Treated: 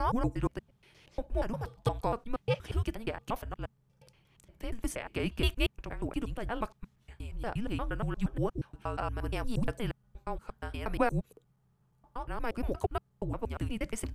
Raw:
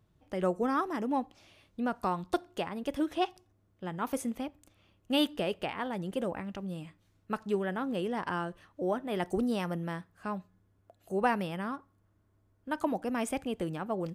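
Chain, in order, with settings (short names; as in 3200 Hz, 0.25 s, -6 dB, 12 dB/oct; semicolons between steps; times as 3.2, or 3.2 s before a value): slices in reverse order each 0.118 s, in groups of 7; frequency shift -230 Hz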